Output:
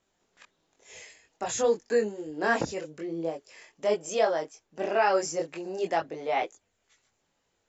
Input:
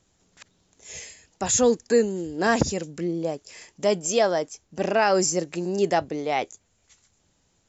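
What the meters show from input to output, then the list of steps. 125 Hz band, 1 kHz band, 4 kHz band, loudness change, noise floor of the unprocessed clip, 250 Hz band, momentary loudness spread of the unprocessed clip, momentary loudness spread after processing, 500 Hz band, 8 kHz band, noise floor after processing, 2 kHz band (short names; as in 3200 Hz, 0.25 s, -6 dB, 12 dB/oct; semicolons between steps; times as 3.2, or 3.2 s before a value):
-12.0 dB, -3.0 dB, -7.5 dB, -5.0 dB, -68 dBFS, -9.0 dB, 17 LU, 13 LU, -4.0 dB, n/a, -76 dBFS, -2.5 dB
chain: tone controls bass -12 dB, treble -9 dB; chorus voices 4, 0.58 Hz, delay 22 ms, depth 4.1 ms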